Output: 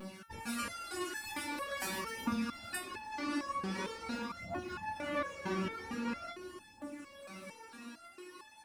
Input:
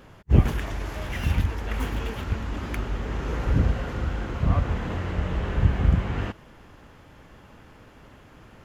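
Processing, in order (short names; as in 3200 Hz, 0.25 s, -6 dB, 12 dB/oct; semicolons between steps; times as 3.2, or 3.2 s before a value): HPF 140 Hz 24 dB/oct; high shelf 4100 Hz +12 dB; comb 3.5 ms, depth 88%; compressor 2:1, threshold -35 dBFS, peak gain reduction 10.5 dB; phaser 0.44 Hz, delay 3.1 ms, feedback 73%; vibrato 0.97 Hz 26 cents; formant shift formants -4 st; on a send: analogue delay 0.315 s, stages 1024, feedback 67%, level -7 dB; on the sum: stepped resonator 4.4 Hz 190–860 Hz; gain +8.5 dB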